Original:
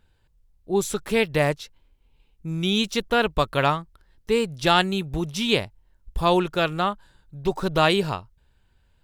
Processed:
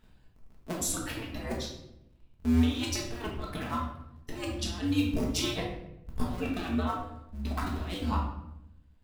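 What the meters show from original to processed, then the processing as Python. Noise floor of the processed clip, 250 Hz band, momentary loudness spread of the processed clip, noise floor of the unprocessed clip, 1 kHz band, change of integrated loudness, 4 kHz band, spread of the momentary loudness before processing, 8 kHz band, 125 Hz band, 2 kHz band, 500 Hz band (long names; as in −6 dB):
−60 dBFS, −4.0 dB, 15 LU, −64 dBFS, −12.5 dB, −9.0 dB, −10.5 dB, 13 LU, 0.0 dB, −4.5 dB, −13.5 dB, −15.5 dB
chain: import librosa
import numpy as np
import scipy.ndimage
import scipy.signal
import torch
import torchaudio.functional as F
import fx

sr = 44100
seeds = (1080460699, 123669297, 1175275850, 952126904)

y = fx.cycle_switch(x, sr, every=2, mode='inverted')
y = fx.dereverb_blind(y, sr, rt60_s=1.7)
y = fx.over_compress(y, sr, threshold_db=-28.0, ratio=-0.5)
y = fx.room_shoebox(y, sr, seeds[0], volume_m3=230.0, walls='mixed', distance_m=1.5)
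y = y * librosa.db_to_amplitude(-7.5)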